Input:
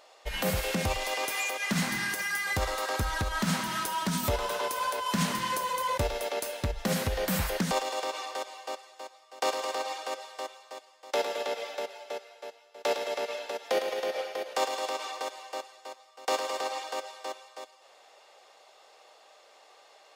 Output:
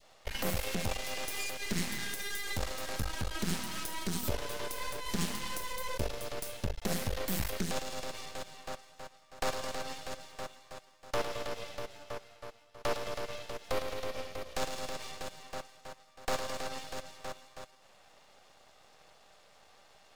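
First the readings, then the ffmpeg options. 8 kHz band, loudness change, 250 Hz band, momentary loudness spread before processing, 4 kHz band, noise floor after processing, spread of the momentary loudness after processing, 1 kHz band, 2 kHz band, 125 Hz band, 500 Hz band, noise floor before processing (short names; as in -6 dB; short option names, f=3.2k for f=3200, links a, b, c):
-4.0 dB, -6.5 dB, -5.5 dB, 12 LU, -5.0 dB, -61 dBFS, 11 LU, -9.0 dB, -7.5 dB, -5.0 dB, -7.0 dB, -58 dBFS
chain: -af "aeval=exprs='max(val(0),0)':c=same,adynamicequalizer=threshold=0.00355:dfrequency=1100:dqfactor=0.71:tfrequency=1100:tqfactor=0.71:attack=5:release=100:ratio=0.375:range=3.5:mode=cutabove:tftype=bell"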